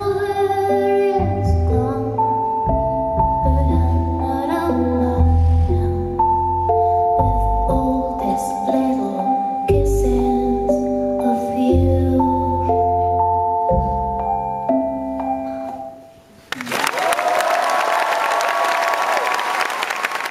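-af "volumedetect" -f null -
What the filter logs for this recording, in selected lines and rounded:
mean_volume: -17.8 dB
max_volume: -1.4 dB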